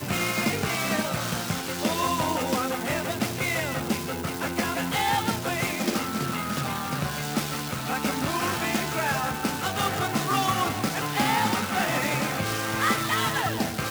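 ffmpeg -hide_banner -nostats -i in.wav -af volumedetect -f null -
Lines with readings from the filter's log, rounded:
mean_volume: -26.9 dB
max_volume: -11.1 dB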